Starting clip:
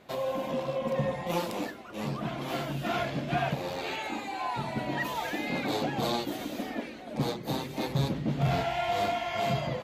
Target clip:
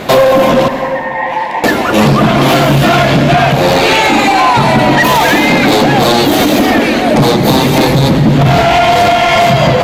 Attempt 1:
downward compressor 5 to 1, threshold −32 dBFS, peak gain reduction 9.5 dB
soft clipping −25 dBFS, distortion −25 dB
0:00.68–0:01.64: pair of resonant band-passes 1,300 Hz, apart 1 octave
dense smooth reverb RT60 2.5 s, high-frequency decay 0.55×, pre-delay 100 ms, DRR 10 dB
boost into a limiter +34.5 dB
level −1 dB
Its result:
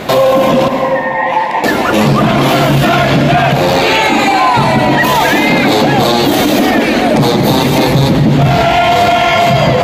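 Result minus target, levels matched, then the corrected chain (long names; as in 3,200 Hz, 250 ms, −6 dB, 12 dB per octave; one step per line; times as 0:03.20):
soft clipping: distortion −13 dB
downward compressor 5 to 1, threshold −32 dBFS, peak gain reduction 9.5 dB
soft clipping −34.5 dBFS, distortion −12 dB
0:00.68–0:01.64: pair of resonant band-passes 1,300 Hz, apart 1 octave
dense smooth reverb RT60 2.5 s, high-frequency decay 0.55×, pre-delay 100 ms, DRR 10 dB
boost into a limiter +34.5 dB
level −1 dB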